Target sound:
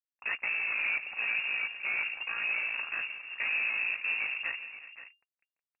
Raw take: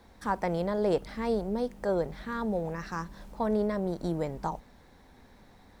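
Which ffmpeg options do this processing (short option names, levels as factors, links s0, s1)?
-filter_complex "[0:a]lowshelf=f=280:g=11.5,asplit=2[s0][s1];[s1]acompressor=threshold=0.00891:ratio=6,volume=0.75[s2];[s0][s2]amix=inputs=2:normalize=0,aeval=exprs='val(0)*sin(2*PI*28*n/s)':c=same,acrusher=bits=4:mix=0:aa=0.5,flanger=delay=1.7:depth=6.4:regen=-57:speed=0.6:shape=triangular,asoftclip=type=hard:threshold=0.0447,asplit=2[s3][s4];[s4]aecho=0:1:168|367|524:0.126|0.106|0.211[s5];[s3][s5]amix=inputs=2:normalize=0,lowpass=f=2400:t=q:w=0.5098,lowpass=f=2400:t=q:w=0.6013,lowpass=f=2400:t=q:w=0.9,lowpass=f=2400:t=q:w=2.563,afreqshift=-2800"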